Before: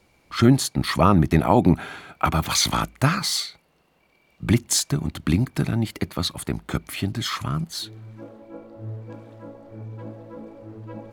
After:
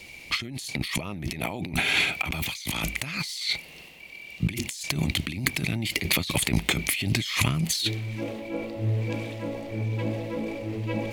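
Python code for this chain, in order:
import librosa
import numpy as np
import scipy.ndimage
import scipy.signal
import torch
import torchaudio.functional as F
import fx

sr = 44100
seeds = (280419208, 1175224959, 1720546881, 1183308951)

y = fx.transient(x, sr, attack_db=0, sustain_db=5)
y = fx.high_shelf_res(y, sr, hz=1800.0, db=8.0, q=3.0)
y = fx.over_compress(y, sr, threshold_db=-29.0, ratio=-1.0)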